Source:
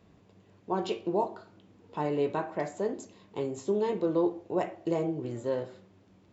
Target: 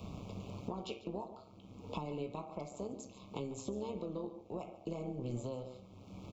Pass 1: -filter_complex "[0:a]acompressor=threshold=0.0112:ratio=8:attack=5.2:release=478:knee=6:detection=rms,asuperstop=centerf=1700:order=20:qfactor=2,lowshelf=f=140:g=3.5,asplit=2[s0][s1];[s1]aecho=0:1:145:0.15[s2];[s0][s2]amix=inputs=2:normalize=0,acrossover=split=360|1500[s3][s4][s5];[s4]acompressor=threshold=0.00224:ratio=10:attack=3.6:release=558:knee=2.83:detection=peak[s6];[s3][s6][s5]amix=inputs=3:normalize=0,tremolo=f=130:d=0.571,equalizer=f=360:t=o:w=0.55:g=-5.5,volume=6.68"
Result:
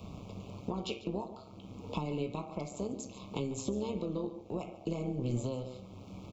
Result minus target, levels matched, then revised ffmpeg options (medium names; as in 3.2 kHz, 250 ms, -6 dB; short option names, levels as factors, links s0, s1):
compression: peak gain reduction -7 dB
-filter_complex "[0:a]acompressor=threshold=0.00447:ratio=8:attack=5.2:release=478:knee=6:detection=rms,asuperstop=centerf=1700:order=20:qfactor=2,lowshelf=f=140:g=3.5,asplit=2[s0][s1];[s1]aecho=0:1:145:0.15[s2];[s0][s2]amix=inputs=2:normalize=0,acrossover=split=360|1500[s3][s4][s5];[s4]acompressor=threshold=0.00224:ratio=10:attack=3.6:release=558:knee=2.83:detection=peak[s6];[s3][s6][s5]amix=inputs=3:normalize=0,tremolo=f=130:d=0.571,equalizer=f=360:t=o:w=0.55:g=-5.5,volume=6.68"